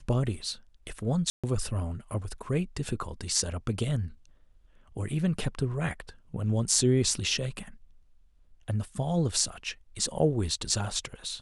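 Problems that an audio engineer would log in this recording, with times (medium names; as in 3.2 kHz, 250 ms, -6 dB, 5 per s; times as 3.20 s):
1.30–1.44 s: dropout 136 ms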